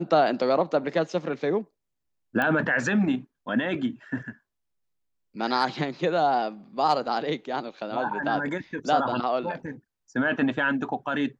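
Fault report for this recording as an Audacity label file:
2.420000	2.420000	pop -14 dBFS

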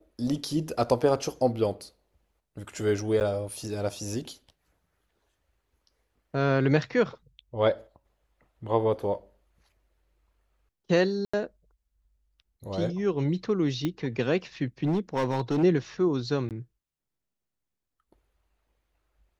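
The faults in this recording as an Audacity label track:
3.200000	3.210000	gap 9.1 ms
11.250000	11.340000	gap 85 ms
13.850000	13.850000	pop -16 dBFS
14.830000	15.640000	clipped -21.5 dBFS
16.490000	16.510000	gap 18 ms

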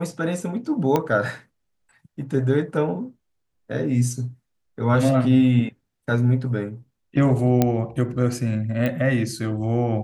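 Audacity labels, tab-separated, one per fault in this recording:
0.960000	0.960000	pop -8 dBFS
7.620000	7.620000	pop -5 dBFS
8.860000	8.860000	pop -13 dBFS

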